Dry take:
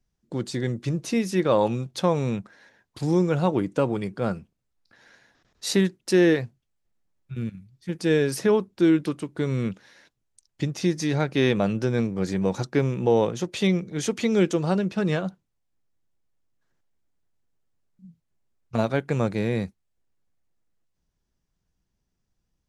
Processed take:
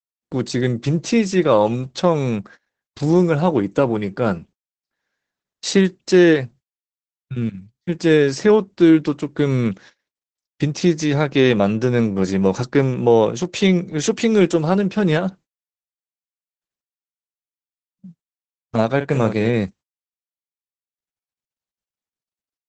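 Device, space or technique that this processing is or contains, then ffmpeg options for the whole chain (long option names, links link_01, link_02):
video call: -filter_complex "[0:a]asettb=1/sr,asplit=3[link_01][link_02][link_03];[link_01]atrim=end=18.964[link_04];[link_02]atrim=start=18.96:end=19.5,asetpts=PTS-STARTPTS,afade=type=in:duration=0.004:curve=qsin,afade=type=out:start_time=0.536:duration=0.004:curve=qsin,asplit=2[link_05][link_06];[link_06]adelay=45,volume=-9.5dB[link_07];[link_05][link_07]amix=inputs=2:normalize=0,atrim=end_sample=23814[link_08];[link_03]atrim=start=19.496[link_09];[link_04][link_08]acrossfade=duration=0.004:curve1=hsin:curve2=qsin[link_10];[link_10][link_09]acrossfade=duration=0.004:curve1=qsin:curve2=hsin,highpass=frequency=100:poles=1,dynaudnorm=framelen=110:gausssize=5:maxgain=9dB,agate=range=-30dB:threshold=-40dB:ratio=16:detection=peak" -ar 48000 -c:a libopus -b:a 12k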